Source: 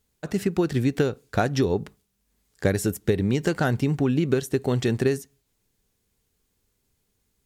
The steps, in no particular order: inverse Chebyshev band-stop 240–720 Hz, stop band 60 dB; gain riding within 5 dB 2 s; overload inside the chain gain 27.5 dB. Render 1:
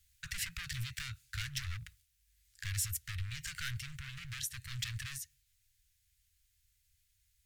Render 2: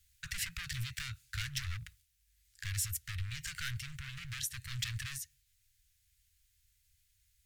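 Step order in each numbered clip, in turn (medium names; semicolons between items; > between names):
overload inside the chain > gain riding > inverse Chebyshev band-stop; overload inside the chain > inverse Chebyshev band-stop > gain riding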